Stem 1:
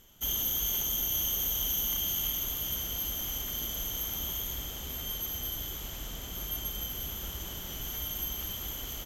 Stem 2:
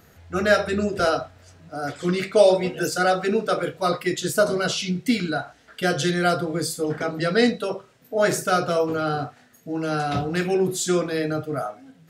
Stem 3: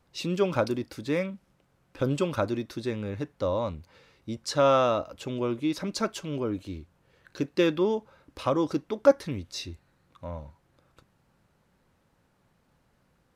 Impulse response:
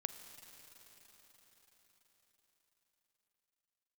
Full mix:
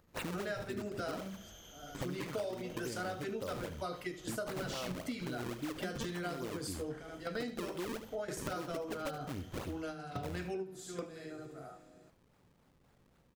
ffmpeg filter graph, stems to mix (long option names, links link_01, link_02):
-filter_complex "[0:a]lowpass=5700,adelay=900,volume=-18.5dB[link_01];[1:a]volume=-11dB,asplit=3[link_02][link_03][link_04];[link_03]volume=-13.5dB[link_05];[link_04]volume=-13.5dB[link_06];[2:a]acompressor=threshold=-30dB:ratio=6,acrusher=samples=36:mix=1:aa=0.000001:lfo=1:lforange=57.6:lforate=3.7,volume=-0.5dB,asplit=3[link_07][link_08][link_09];[link_08]volume=-13dB[link_10];[link_09]apad=whole_len=533534[link_11];[link_02][link_11]sidechaingate=range=-33dB:threshold=-59dB:ratio=16:detection=peak[link_12];[3:a]atrim=start_sample=2205[link_13];[link_05][link_13]afir=irnorm=-1:irlink=0[link_14];[link_06][link_10]amix=inputs=2:normalize=0,aecho=0:1:74:1[link_15];[link_01][link_12][link_07][link_14][link_15]amix=inputs=5:normalize=0,bandreject=frequency=53.47:width_type=h:width=4,bandreject=frequency=106.94:width_type=h:width=4,bandreject=frequency=160.41:width_type=h:width=4,bandreject=frequency=213.88:width_type=h:width=4,acompressor=threshold=-37dB:ratio=5"